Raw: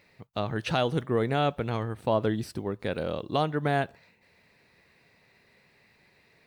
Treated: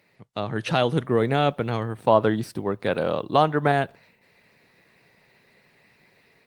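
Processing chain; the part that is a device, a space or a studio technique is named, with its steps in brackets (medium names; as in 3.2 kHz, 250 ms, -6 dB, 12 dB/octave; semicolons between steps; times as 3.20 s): 2.03–3.72 s: dynamic bell 990 Hz, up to +6 dB, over -39 dBFS, Q 0.76; video call (high-pass 100 Hz 24 dB/octave; level rider gain up to 5 dB; Opus 24 kbps 48 kHz)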